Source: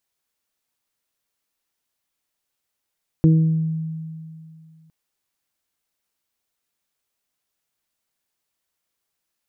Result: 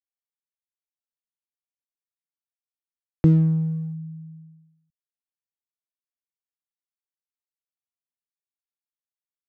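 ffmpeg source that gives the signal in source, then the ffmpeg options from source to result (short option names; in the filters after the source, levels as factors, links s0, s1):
-f lavfi -i "aevalsrc='0.316*pow(10,-3*t/2.47)*sin(2*PI*160*t)+0.178*pow(10,-3*t/0.65)*sin(2*PI*320*t)+0.0398*pow(10,-3*t/0.78)*sin(2*PI*480*t)':d=1.66:s=44100"
-filter_complex "[0:a]agate=range=0.0224:threshold=0.00891:ratio=3:detection=peak,acrossover=split=220[s0][s1];[s1]aeval=exprs='sgn(val(0))*max(abs(val(0))-0.00944,0)':c=same[s2];[s0][s2]amix=inputs=2:normalize=0"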